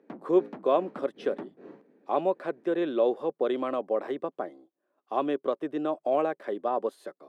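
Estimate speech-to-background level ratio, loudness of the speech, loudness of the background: 16.5 dB, -29.5 LUFS, -46.0 LUFS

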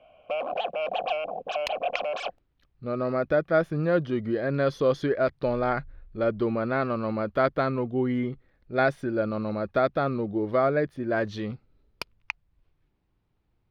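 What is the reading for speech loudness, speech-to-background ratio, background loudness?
-27.0 LUFS, 3.5 dB, -30.5 LUFS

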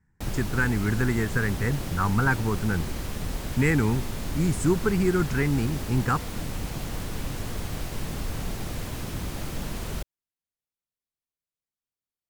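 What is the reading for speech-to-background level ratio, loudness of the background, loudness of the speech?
8.0 dB, -34.0 LUFS, -26.0 LUFS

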